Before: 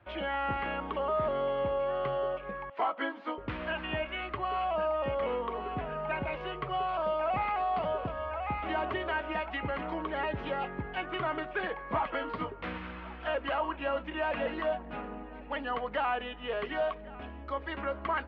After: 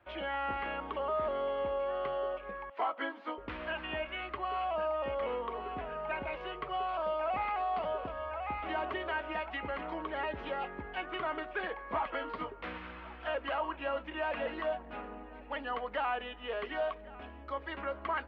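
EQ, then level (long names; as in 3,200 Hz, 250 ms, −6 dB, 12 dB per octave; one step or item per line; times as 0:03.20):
parametric band 130 Hz −12 dB 1.1 octaves
−2.5 dB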